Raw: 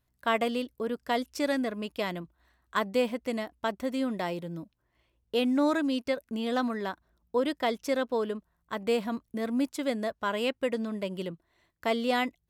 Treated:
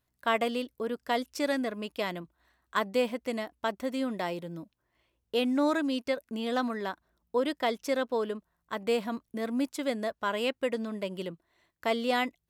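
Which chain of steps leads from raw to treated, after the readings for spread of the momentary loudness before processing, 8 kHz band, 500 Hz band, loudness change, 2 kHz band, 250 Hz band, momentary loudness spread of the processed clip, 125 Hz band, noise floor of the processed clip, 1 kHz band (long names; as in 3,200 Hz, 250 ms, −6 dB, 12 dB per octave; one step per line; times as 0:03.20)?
9 LU, 0.0 dB, −0.5 dB, −1.0 dB, 0.0 dB, −2.0 dB, 8 LU, −2.5 dB, −80 dBFS, 0.0 dB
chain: low-shelf EQ 150 Hz −7 dB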